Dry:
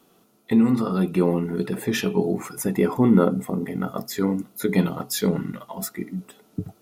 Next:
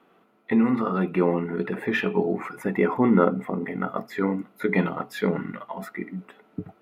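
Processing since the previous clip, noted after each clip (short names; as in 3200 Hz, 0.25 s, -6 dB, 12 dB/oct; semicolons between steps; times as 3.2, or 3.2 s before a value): EQ curve 120 Hz 0 dB, 190 Hz +5 dB, 2100 Hz +14 dB, 5800 Hz -11 dB; gain -8.5 dB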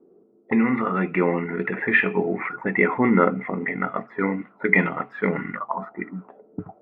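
envelope low-pass 380–2100 Hz up, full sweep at -26.5 dBFS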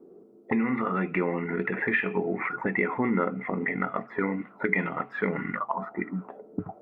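compressor 2.5:1, threshold -32 dBFS, peak gain reduction 13.5 dB; gain +4 dB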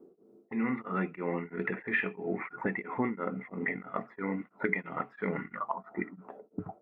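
beating tremolo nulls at 3 Hz; gain -3 dB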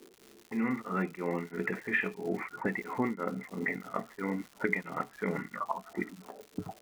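crackle 230/s -41 dBFS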